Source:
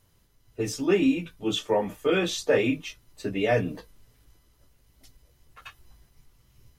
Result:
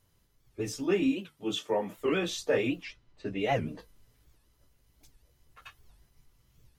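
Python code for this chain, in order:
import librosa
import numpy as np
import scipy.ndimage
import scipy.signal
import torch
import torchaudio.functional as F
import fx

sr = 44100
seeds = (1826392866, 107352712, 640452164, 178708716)

y = fx.highpass(x, sr, hz=130.0, slope=12, at=(1.12, 1.98))
y = fx.env_lowpass(y, sr, base_hz=2600.0, full_db=-22.0, at=(2.83, 3.78), fade=0.02)
y = fx.record_warp(y, sr, rpm=78.0, depth_cents=250.0)
y = y * librosa.db_to_amplitude(-5.0)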